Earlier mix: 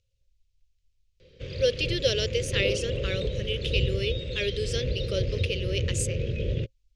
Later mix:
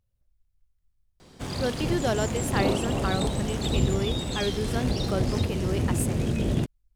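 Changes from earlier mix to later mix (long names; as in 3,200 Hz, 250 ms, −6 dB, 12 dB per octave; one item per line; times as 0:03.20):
background: remove head-to-tape spacing loss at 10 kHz 40 dB
master: remove drawn EQ curve 110 Hz 0 dB, 260 Hz −15 dB, 530 Hz +8 dB, 770 Hz −28 dB, 2,600 Hz +11 dB, 6,600 Hz +10 dB, 15,000 Hz −19 dB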